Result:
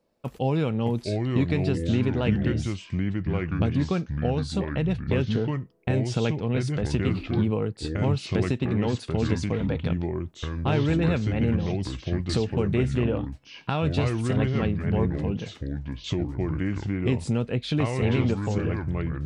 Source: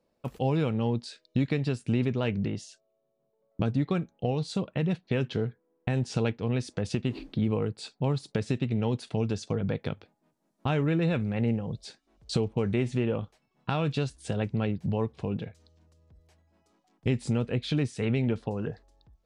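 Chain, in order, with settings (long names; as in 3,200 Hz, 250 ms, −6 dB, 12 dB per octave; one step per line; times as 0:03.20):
delay with pitch and tempo change per echo 552 ms, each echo −4 semitones, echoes 2
level +2 dB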